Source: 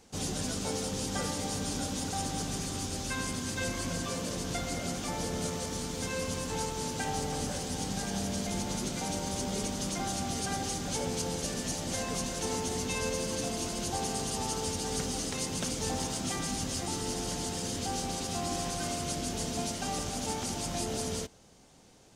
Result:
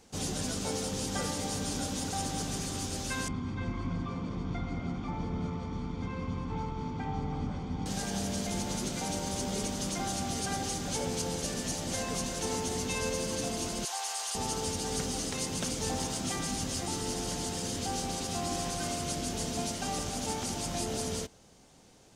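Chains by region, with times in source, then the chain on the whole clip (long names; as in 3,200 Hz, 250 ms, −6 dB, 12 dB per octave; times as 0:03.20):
0:03.28–0:07.86: head-to-tape spacing loss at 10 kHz 40 dB + comb filter 0.9 ms, depth 62%
0:13.85–0:14.35: high-pass filter 790 Hz 24 dB per octave + envelope flattener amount 50%
whole clip: no processing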